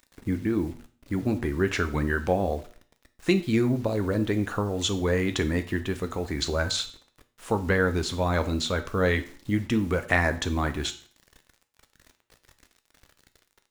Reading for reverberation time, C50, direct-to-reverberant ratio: 0.45 s, 14.5 dB, 8.5 dB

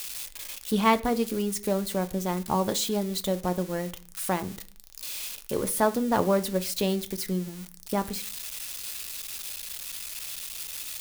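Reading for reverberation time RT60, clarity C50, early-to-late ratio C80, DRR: 0.40 s, 18.5 dB, 23.5 dB, 9.0 dB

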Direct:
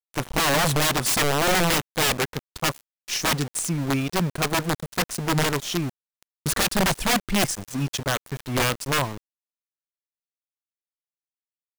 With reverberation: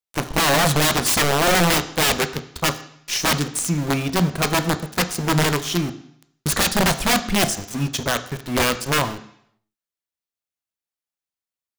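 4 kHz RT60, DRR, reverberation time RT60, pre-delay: 0.70 s, 10.0 dB, 0.70 s, 6 ms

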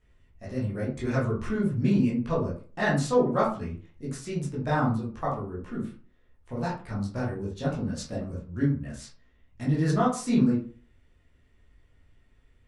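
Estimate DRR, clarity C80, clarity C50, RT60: -8.0 dB, 11.5 dB, 6.0 dB, 0.40 s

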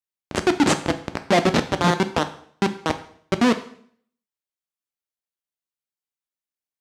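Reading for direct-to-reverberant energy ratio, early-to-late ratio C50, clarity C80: 8.0 dB, 13.5 dB, 16.5 dB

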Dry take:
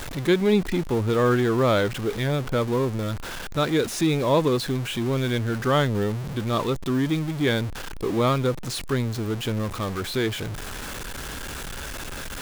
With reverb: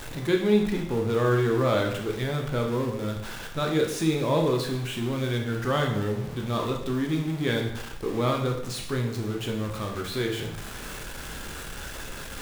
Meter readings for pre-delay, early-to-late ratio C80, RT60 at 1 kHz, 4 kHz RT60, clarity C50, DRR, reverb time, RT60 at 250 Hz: 7 ms, 9.0 dB, 0.75 s, 0.70 s, 6.0 dB, 1.5 dB, 0.70 s, 0.70 s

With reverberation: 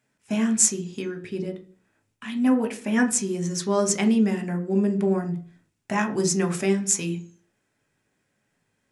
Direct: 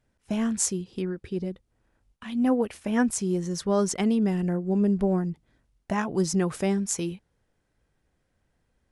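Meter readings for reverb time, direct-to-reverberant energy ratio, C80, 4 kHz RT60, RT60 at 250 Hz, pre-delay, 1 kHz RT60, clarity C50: 0.45 s, 5.0 dB, 19.5 dB, 0.60 s, 0.55 s, 3 ms, 0.40 s, 14.5 dB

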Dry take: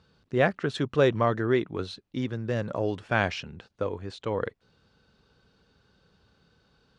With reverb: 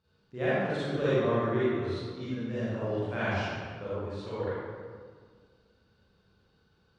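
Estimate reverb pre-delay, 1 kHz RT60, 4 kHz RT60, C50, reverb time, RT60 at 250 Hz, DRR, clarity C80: 36 ms, 1.7 s, 1.1 s, -6.5 dB, 1.8 s, 2.0 s, -12.0 dB, -2.5 dB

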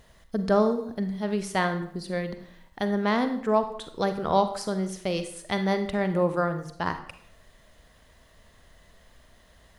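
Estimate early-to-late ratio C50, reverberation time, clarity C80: 10.0 dB, 0.65 s, 13.0 dB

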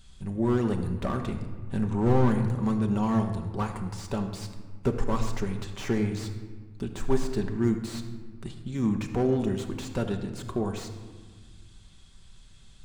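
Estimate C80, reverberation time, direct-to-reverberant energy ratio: 9.5 dB, 1.5 s, 4.0 dB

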